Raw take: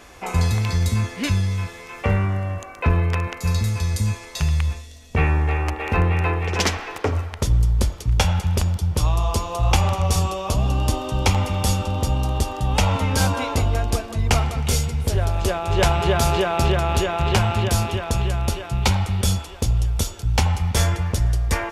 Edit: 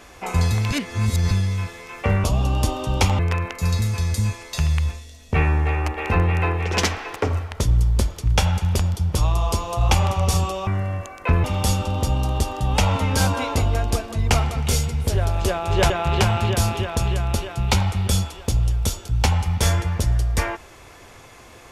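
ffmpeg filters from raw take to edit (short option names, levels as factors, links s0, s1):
-filter_complex "[0:a]asplit=8[s0][s1][s2][s3][s4][s5][s6][s7];[s0]atrim=end=0.712[s8];[s1]atrim=start=0.708:end=1.312,asetpts=PTS-STARTPTS,areverse[s9];[s2]atrim=start=1.308:end=2.242[s10];[s3]atrim=start=10.488:end=11.442[s11];[s4]atrim=start=3.008:end=10.492[s12];[s5]atrim=start=2.238:end=3.012[s13];[s6]atrim=start=11.438:end=15.902[s14];[s7]atrim=start=17.038[s15];[s8][s9]acrossfade=d=0.004:c1=hsin:c2=hsin[s16];[s16][s10]acrossfade=d=0.004:c1=hsin:c2=hsin[s17];[s17][s11]acrossfade=d=0.004:c1=hsin:c2=hsin[s18];[s18][s12]acrossfade=d=0.004:c1=hsin:c2=hsin[s19];[s19][s13]acrossfade=d=0.004:c1=hsin:c2=hsin[s20];[s20][s14]acrossfade=d=0.004:c1=hsin:c2=hsin[s21];[s21][s15]acrossfade=d=0.004:c1=hsin:c2=hsin"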